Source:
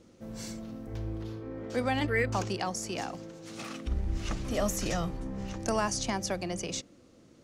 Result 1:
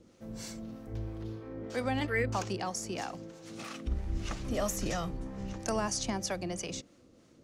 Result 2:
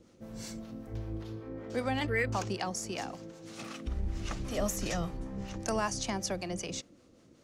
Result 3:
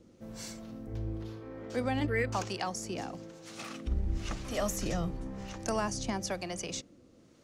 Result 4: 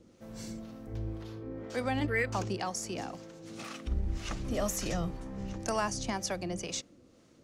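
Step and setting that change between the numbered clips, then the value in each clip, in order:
two-band tremolo in antiphase, speed: 3.1, 5.2, 1, 2 Hertz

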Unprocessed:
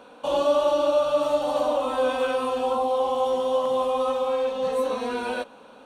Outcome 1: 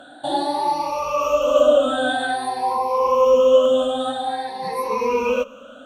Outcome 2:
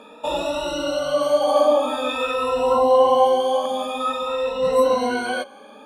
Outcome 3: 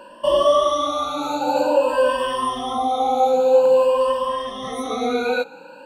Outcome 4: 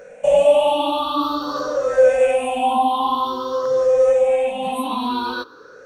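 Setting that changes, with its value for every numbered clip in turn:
rippled gain that drifts along the octave scale, ripples per octave: 0.83, 2, 1.3, 0.54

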